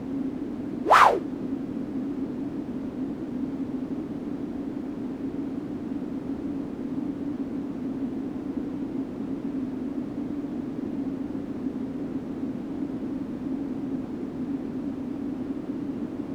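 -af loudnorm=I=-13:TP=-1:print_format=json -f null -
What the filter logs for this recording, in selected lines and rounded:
"input_i" : "-30.0",
"input_tp" : "-3.9",
"input_lra" : "5.0",
"input_thresh" : "-40.0",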